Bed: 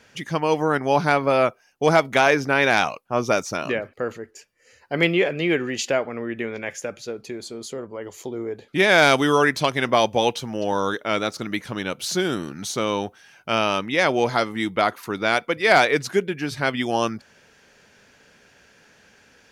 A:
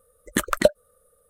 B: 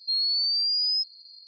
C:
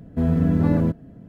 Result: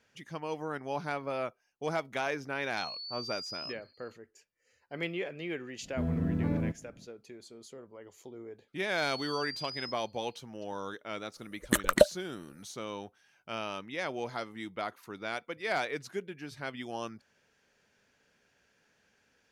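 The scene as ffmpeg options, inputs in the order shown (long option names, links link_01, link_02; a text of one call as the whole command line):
ffmpeg -i bed.wav -i cue0.wav -i cue1.wav -i cue2.wav -filter_complex "[2:a]asplit=2[link_01][link_02];[0:a]volume=-16dB[link_03];[link_01]atrim=end=1.47,asetpts=PTS-STARTPTS,volume=-17dB,afade=type=in:duration=0.004:curve=hsin,afade=type=out:start_time=1.466:duration=0.004:curve=hsin,adelay=2690[link_04];[3:a]atrim=end=1.28,asetpts=PTS-STARTPTS,volume=-11.5dB,afade=type=in:duration=0.05,afade=type=out:start_time=1.23:duration=0.05,adelay=5800[link_05];[link_02]atrim=end=1.47,asetpts=PTS-STARTPTS,volume=-17.5dB,afade=type=in:duration=0.004:curve=hsin,afade=type=out:start_time=1.466:duration=0.004:curve=hsin,adelay=8890[link_06];[1:a]atrim=end=1.29,asetpts=PTS-STARTPTS,volume=-3.5dB,afade=type=in:duration=0.004:curve=hsin,afade=type=out:start_time=1.286:duration=0.004:curve=hsin,adelay=11360[link_07];[link_03][link_04][link_05][link_06][link_07]amix=inputs=5:normalize=0" out.wav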